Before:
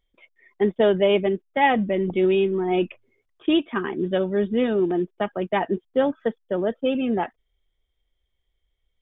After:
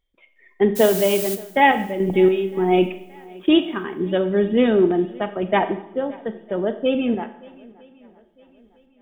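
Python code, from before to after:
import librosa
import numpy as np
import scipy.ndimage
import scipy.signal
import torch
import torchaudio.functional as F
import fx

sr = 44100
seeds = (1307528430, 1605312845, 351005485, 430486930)

y = fx.tremolo_random(x, sr, seeds[0], hz=3.5, depth_pct=70)
y = fx.dmg_noise_colour(y, sr, seeds[1], colour='blue', level_db=-34.0, at=(0.75, 1.34), fade=0.02)
y = fx.high_shelf(y, sr, hz=2700.0, db=-10.0, at=(5.61, 6.23))
y = fx.echo_swing(y, sr, ms=955, ratio=1.5, feedback_pct=36, wet_db=-24.0)
y = fx.rev_schroeder(y, sr, rt60_s=0.69, comb_ms=29, drr_db=10.0)
y = y * 10.0 ** (5.0 / 20.0)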